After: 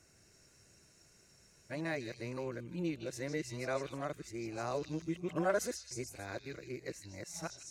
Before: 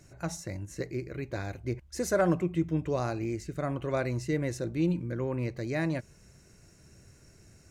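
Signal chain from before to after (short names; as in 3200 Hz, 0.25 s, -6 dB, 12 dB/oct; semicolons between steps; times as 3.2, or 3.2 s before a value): whole clip reversed; low shelf 260 Hz -11 dB; delay with a stepping band-pass 0.157 s, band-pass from 4000 Hz, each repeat 0.7 oct, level -1 dB; gain -4 dB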